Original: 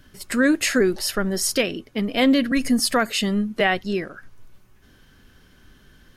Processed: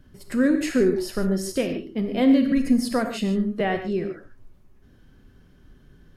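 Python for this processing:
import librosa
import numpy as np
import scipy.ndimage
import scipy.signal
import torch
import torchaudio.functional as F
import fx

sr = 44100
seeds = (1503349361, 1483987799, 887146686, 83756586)

y = fx.tilt_shelf(x, sr, db=6.5, hz=870.0)
y = fx.rev_gated(y, sr, seeds[0], gate_ms=170, shape='flat', drr_db=5.5)
y = y * 10.0 ** (-6.0 / 20.0)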